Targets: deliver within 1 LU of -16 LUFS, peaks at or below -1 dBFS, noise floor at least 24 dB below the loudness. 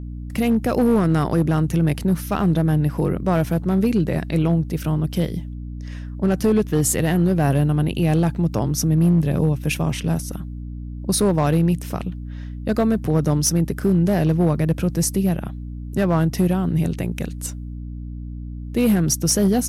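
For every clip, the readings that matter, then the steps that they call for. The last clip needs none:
clipped samples 1.2%; clipping level -11.5 dBFS; hum 60 Hz; highest harmonic 300 Hz; hum level -29 dBFS; loudness -20.5 LUFS; peak level -11.5 dBFS; loudness target -16.0 LUFS
-> clip repair -11.5 dBFS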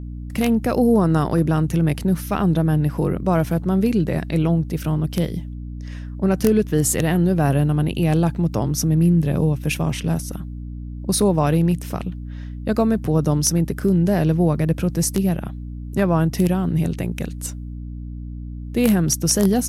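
clipped samples 0.0%; hum 60 Hz; highest harmonic 300 Hz; hum level -29 dBFS
-> de-hum 60 Hz, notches 5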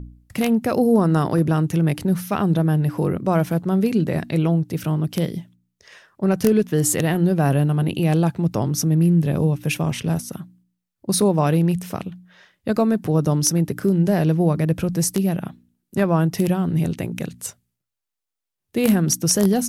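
hum not found; loudness -20.5 LUFS; peak level -2.5 dBFS; loudness target -16.0 LUFS
-> trim +4.5 dB; peak limiter -1 dBFS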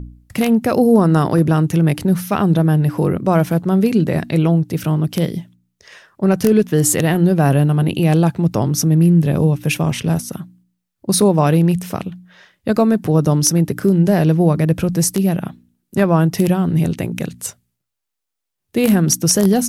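loudness -16.0 LUFS; peak level -1.0 dBFS; noise floor -77 dBFS

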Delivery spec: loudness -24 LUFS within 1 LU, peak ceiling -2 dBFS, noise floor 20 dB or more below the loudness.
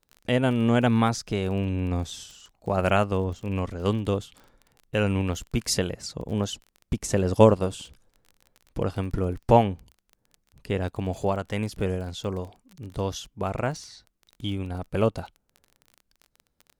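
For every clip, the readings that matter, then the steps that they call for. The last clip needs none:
tick rate 24 per s; loudness -26.5 LUFS; peak level -2.5 dBFS; loudness target -24.0 LUFS
-> de-click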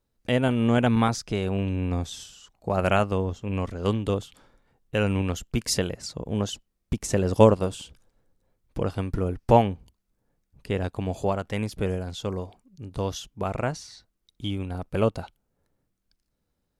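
tick rate 0 per s; loudness -26.5 LUFS; peak level -2.5 dBFS; loudness target -24.0 LUFS
-> trim +2.5 dB; peak limiter -2 dBFS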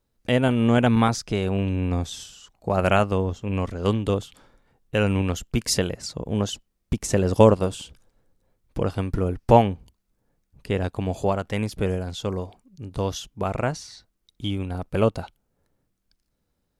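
loudness -24.0 LUFS; peak level -2.0 dBFS; noise floor -75 dBFS

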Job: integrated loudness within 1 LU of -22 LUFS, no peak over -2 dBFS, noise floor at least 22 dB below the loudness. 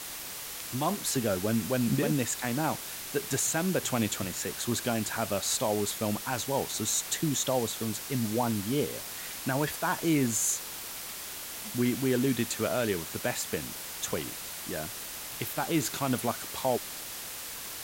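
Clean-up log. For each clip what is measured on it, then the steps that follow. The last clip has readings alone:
noise floor -40 dBFS; noise floor target -53 dBFS; loudness -30.5 LUFS; peak level -15.0 dBFS; loudness target -22.0 LUFS
-> noise reduction 13 dB, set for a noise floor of -40 dBFS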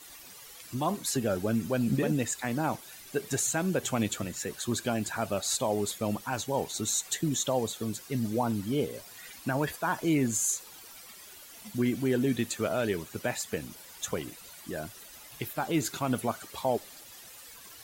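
noise floor -50 dBFS; noise floor target -53 dBFS
-> noise reduction 6 dB, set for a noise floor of -50 dBFS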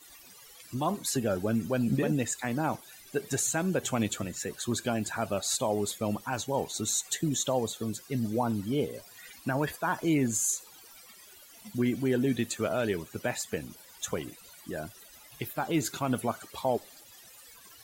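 noise floor -53 dBFS; loudness -31.0 LUFS; peak level -16.5 dBFS; loudness target -22.0 LUFS
-> trim +9 dB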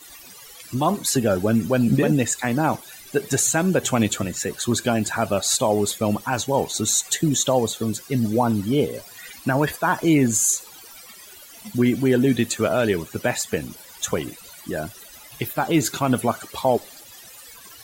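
loudness -22.0 LUFS; peak level -7.5 dBFS; noise floor -44 dBFS

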